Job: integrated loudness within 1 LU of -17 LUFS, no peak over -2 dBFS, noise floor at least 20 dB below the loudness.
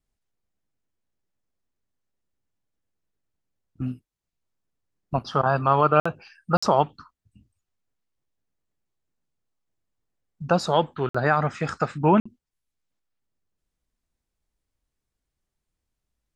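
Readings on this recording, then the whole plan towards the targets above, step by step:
dropouts 4; longest dropout 55 ms; loudness -23.5 LUFS; peak -5.0 dBFS; loudness target -17.0 LUFS
-> interpolate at 6/6.57/11.09/12.2, 55 ms; gain +6.5 dB; limiter -2 dBFS

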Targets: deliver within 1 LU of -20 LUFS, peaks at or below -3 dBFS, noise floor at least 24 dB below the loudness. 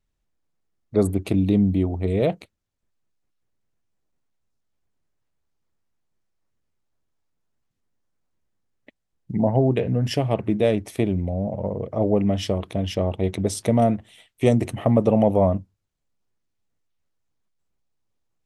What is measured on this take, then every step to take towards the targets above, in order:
loudness -22.5 LUFS; peak -4.5 dBFS; loudness target -20.0 LUFS
-> gain +2.5 dB; limiter -3 dBFS

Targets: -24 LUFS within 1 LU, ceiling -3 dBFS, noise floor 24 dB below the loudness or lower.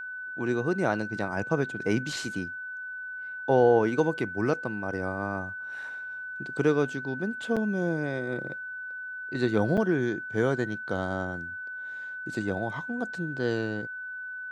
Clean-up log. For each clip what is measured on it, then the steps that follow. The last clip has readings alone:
dropouts 2; longest dropout 6.6 ms; steady tone 1500 Hz; tone level -35 dBFS; loudness -29.5 LUFS; peak -9.5 dBFS; loudness target -24.0 LUFS
-> interpolate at 7.56/9.77, 6.6 ms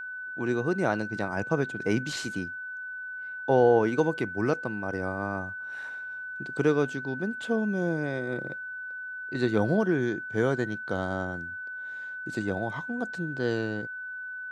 dropouts 0; steady tone 1500 Hz; tone level -35 dBFS
-> notch 1500 Hz, Q 30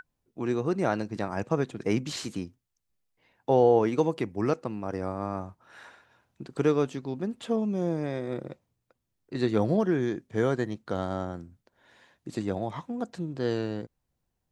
steady tone none; loudness -29.0 LUFS; peak -10.0 dBFS; loudness target -24.0 LUFS
-> gain +5 dB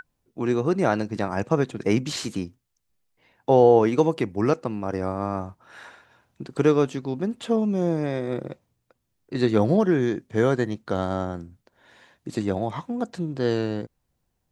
loudness -24.0 LUFS; peak -5.0 dBFS; noise floor -76 dBFS

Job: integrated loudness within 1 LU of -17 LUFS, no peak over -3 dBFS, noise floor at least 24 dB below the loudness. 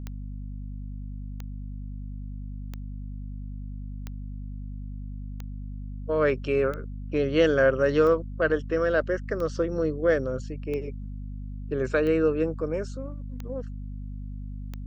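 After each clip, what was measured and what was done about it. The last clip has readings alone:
clicks 12; hum 50 Hz; harmonics up to 250 Hz; hum level -33 dBFS; loudness -26.0 LUFS; peak -9.5 dBFS; loudness target -17.0 LUFS
-> de-click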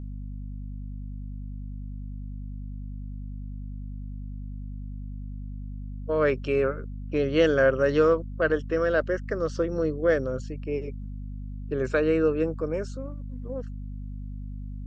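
clicks 0; hum 50 Hz; harmonics up to 250 Hz; hum level -33 dBFS
-> notches 50/100/150/200/250 Hz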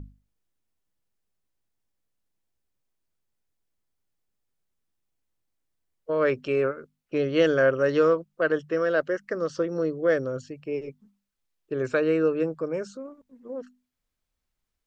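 hum none; loudness -25.5 LUFS; peak -9.5 dBFS; loudness target -17.0 LUFS
-> gain +8.5 dB; limiter -3 dBFS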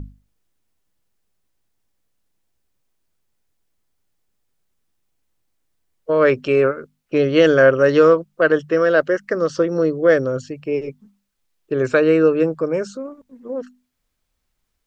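loudness -17.0 LUFS; peak -3.0 dBFS; noise floor -73 dBFS

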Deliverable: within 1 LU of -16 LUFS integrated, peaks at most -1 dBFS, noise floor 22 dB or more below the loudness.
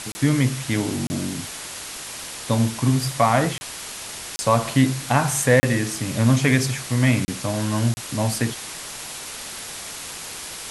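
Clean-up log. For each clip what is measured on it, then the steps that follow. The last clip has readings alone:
dropouts 7; longest dropout 30 ms; noise floor -35 dBFS; noise floor target -45 dBFS; loudness -22.5 LUFS; peak -3.5 dBFS; loudness target -16.0 LUFS
-> interpolate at 0.12/1.07/3.58/4.36/5.6/7.25/7.94, 30 ms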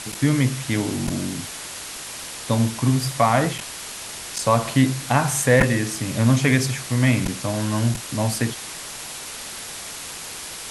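dropouts 0; noise floor -35 dBFS; noise floor target -45 dBFS
-> denoiser 10 dB, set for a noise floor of -35 dBFS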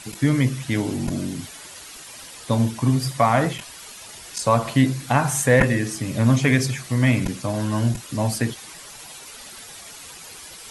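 noise floor -41 dBFS; noise floor target -44 dBFS
-> denoiser 6 dB, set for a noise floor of -41 dBFS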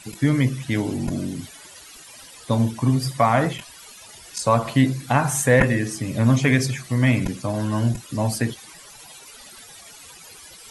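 noise floor -44 dBFS; loudness -21.5 LUFS; peak -4.0 dBFS; loudness target -16.0 LUFS
-> gain +5.5 dB; limiter -1 dBFS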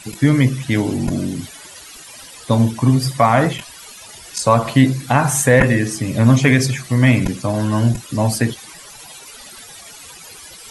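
loudness -16.5 LUFS; peak -1.0 dBFS; noise floor -39 dBFS

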